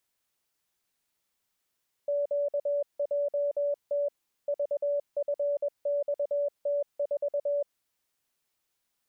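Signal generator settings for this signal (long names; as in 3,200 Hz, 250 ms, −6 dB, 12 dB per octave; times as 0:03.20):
Morse code "QJT VFXT4" 21 words per minute 575 Hz −25 dBFS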